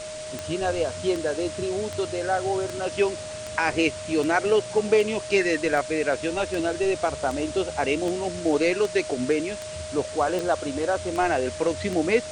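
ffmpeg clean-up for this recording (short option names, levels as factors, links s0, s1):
-af "adeclick=t=4,bandreject=f=620:w=30,afwtdn=0.013"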